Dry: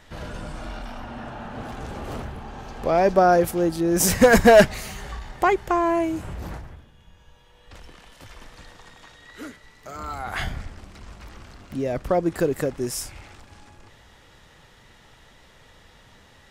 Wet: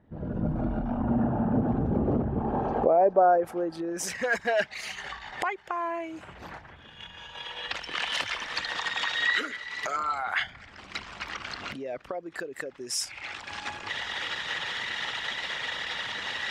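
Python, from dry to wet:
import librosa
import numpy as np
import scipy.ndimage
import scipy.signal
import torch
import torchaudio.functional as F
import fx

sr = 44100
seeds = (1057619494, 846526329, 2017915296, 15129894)

y = fx.envelope_sharpen(x, sr, power=1.5)
y = fx.recorder_agc(y, sr, target_db=-11.0, rise_db_per_s=33.0, max_gain_db=30)
y = fx.filter_sweep_bandpass(y, sr, from_hz=230.0, to_hz=3000.0, start_s=2.03, end_s=4.32, q=0.89)
y = F.gain(torch.from_numpy(y), -2.0).numpy()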